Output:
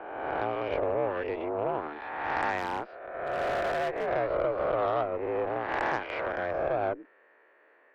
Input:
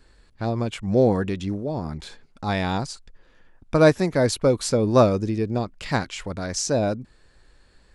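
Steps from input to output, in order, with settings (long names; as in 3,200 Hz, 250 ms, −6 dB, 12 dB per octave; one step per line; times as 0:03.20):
peak hold with a rise ahead of every peak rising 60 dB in 1.57 s
downward compressor 16 to 1, threshold −23 dBFS, peak gain reduction 15.5 dB
single-sideband voice off tune +65 Hz 300–2,300 Hz
0:02.58–0:04.07: hard clipping −26 dBFS, distortion −17 dB
harmonic generator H 6 −22 dB, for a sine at −15 dBFS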